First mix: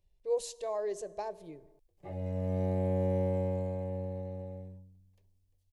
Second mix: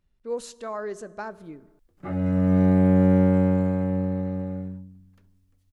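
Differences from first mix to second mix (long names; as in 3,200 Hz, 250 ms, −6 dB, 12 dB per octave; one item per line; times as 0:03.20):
background +6.5 dB
master: remove phaser with its sweep stopped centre 570 Hz, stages 4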